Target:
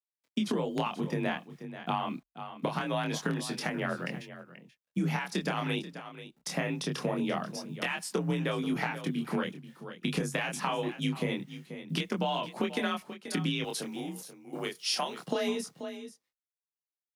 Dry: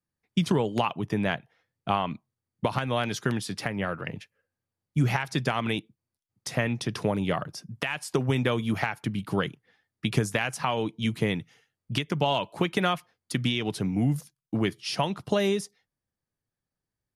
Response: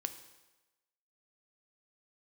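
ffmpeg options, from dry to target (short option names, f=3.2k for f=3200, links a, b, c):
-filter_complex "[0:a]acrusher=bits=10:mix=0:aa=0.000001,aecho=1:1:483:0.168,flanger=delay=22.5:depth=6.5:speed=0.24,acompressor=threshold=-29dB:ratio=4,asettb=1/sr,asplit=3[a][b][c];[a]atrim=end=13.644[d];[b]atrim=start=13.64:end=15.27,asetpts=PTS-STARTPTS,afade=t=in:d=0.004:c=qsin,afade=t=out:st=1.626:d=0.004:c=qsin,bass=f=250:g=-14,treble=f=4k:g=6[e];[c]atrim=start=15.266[f];[d][e]acrossfade=d=0.004:c1=hsin:c2=qsin[g];[g][f]acrossfade=d=0.004:c1=qsin:c2=hsin,afreqshift=38,volume=2dB"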